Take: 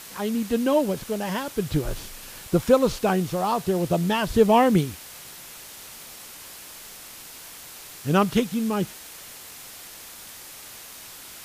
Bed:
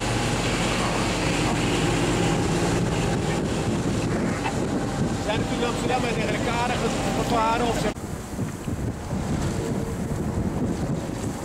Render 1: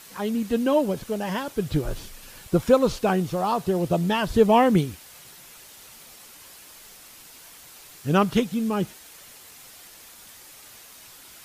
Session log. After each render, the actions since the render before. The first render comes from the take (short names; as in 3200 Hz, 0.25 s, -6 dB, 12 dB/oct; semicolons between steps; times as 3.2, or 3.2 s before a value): denoiser 6 dB, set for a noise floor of -43 dBFS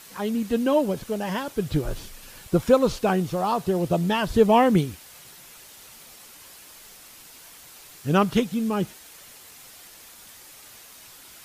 nothing audible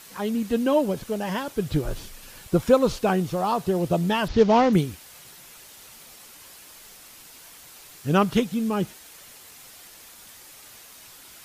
4.28–4.73 CVSD 32 kbps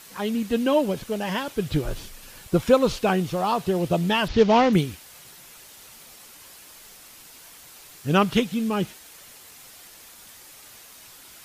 dynamic EQ 2800 Hz, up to +5 dB, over -45 dBFS, Q 1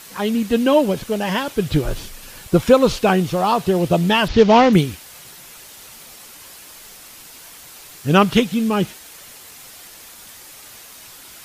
gain +6 dB; limiter -1 dBFS, peak gain reduction 1.5 dB